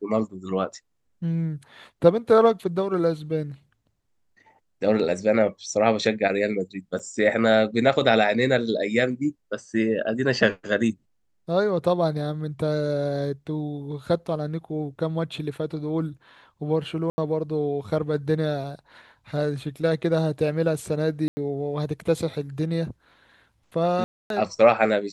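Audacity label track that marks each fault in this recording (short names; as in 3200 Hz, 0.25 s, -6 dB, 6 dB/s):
6.990000	7.000000	gap 6.3 ms
17.100000	17.180000	gap 80 ms
21.280000	21.370000	gap 90 ms
24.040000	24.300000	gap 0.262 s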